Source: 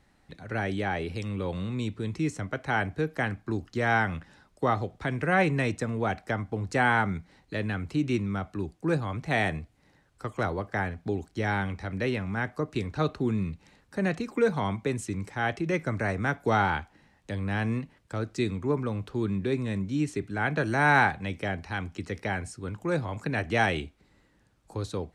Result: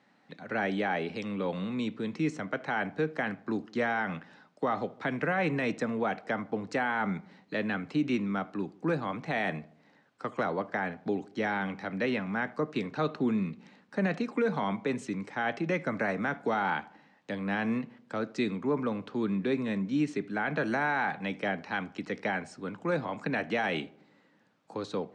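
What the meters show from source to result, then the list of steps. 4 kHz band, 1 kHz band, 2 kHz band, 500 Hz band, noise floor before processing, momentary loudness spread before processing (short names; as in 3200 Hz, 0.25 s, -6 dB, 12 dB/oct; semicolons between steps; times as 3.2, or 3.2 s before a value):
-3.0 dB, -3.5 dB, -3.5 dB, -1.5 dB, -65 dBFS, 10 LU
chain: HPF 180 Hz 24 dB/oct; bell 360 Hz -6 dB 0.32 oct; limiter -21.5 dBFS, peak gain reduction 11 dB; air absorption 120 m; on a send: darkening echo 77 ms, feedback 56%, low-pass 1500 Hz, level -20 dB; on the sum: gain +2.5 dB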